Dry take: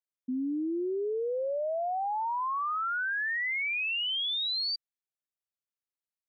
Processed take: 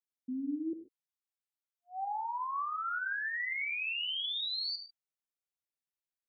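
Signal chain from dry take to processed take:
0:00.73–0:02.89: linear-phase brick-wall high-pass 750 Hz
reverb whose tail is shaped and stops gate 160 ms flat, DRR 6.5 dB
level −5.5 dB

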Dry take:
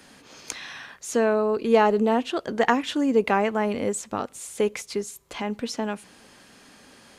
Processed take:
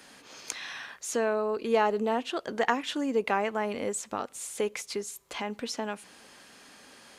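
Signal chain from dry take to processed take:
low-shelf EQ 280 Hz −9 dB
in parallel at −1.5 dB: downward compressor, threshold −33 dBFS, peak gain reduction 16.5 dB
on the sum: level −5.5 dB

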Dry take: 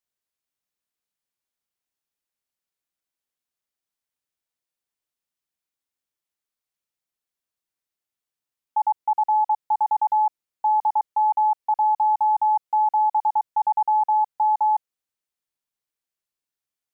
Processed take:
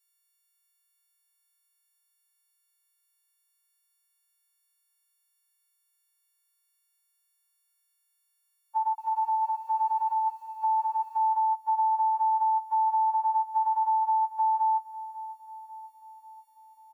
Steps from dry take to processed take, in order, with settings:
every partial snapped to a pitch grid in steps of 4 semitones
Butterworth high-pass 880 Hz 96 dB per octave
downward compressor 5 to 1, threshold −24 dBFS, peak gain reduction 4 dB
repeating echo 542 ms, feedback 59%, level −18.5 dB
0:08.80–0:11.33: feedback echo at a low word length 180 ms, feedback 35%, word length 10 bits, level −11 dB

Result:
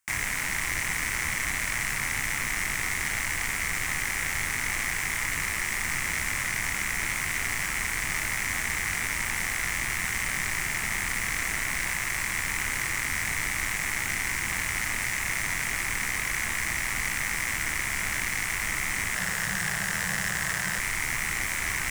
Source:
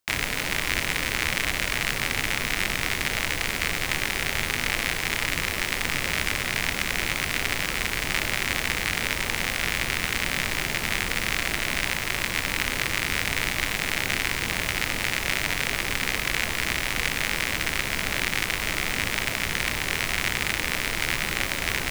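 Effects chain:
octave-band graphic EQ 250/500/1,000/2,000/4,000/8,000 Hz −3/−11/+3/+10/−8/+10 dB
0:19.16–0:20.79: frequency shifter −200 Hz
soft clipping −19.5 dBFS, distortion −5 dB
level −2 dB

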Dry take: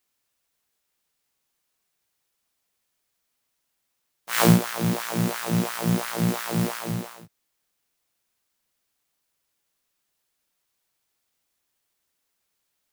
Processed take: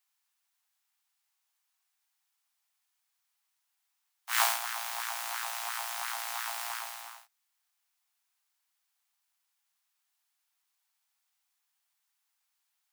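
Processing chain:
Butterworth high-pass 720 Hz 72 dB per octave
level −3.5 dB

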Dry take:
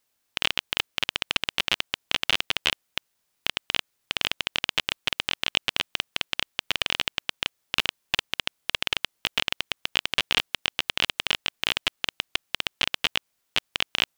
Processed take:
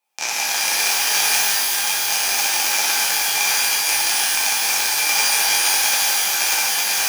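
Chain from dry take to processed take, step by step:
high-pass filter 110 Hz 12 dB per octave
dynamic equaliser 830 Hz, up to +7 dB, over −48 dBFS, Q 1.5
wrong playback speed 7.5 ips tape played at 15 ips
hollow resonant body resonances 820/2,400 Hz, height 18 dB, ringing for 30 ms
reverb with rising layers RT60 3 s, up +12 semitones, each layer −2 dB, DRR −8.5 dB
level −4 dB

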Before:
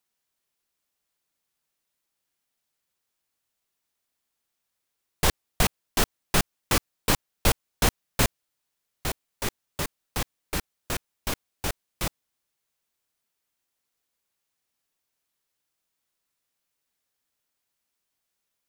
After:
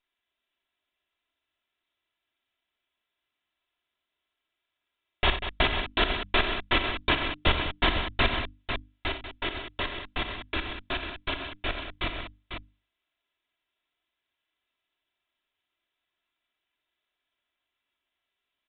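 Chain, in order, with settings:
lower of the sound and its delayed copy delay 3 ms
high-shelf EQ 2,300 Hz +9.5 dB
mains-hum notches 50/100/150/200/250/300 Hz
multi-tap delay 60/89/191/497 ms −10/−15/−10.5/−7.5 dB
downsampling to 8,000 Hz

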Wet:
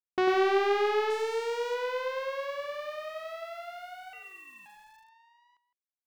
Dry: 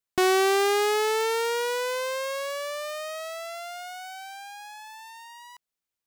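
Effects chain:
0:02.51–0:03.29: phase distortion by the signal itself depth 0.081 ms
mains-hum notches 60/120/180/240 Hz
downward expander −37 dBFS
high-frequency loss of the air 240 metres
0:01.10–0:01.75: gain into a clipping stage and back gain 27 dB
far-end echo of a speakerphone 160 ms, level −13 dB
0:04.13–0:04.66: voice inversion scrambler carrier 3,500 Hz
feedback echo at a low word length 97 ms, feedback 35%, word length 9 bits, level −5 dB
level −3.5 dB

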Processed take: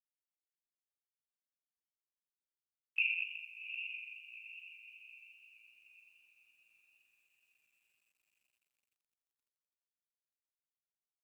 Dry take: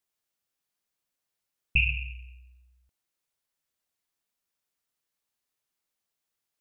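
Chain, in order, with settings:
high-pass filter 1,400 Hz 24 dB per octave
feedback delay with all-pass diffusion 457 ms, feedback 44%, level −8 dB
time stretch by overlap-add 1.7×, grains 85 ms
bit reduction 12 bits
tape wow and flutter 20 cents
level −7.5 dB

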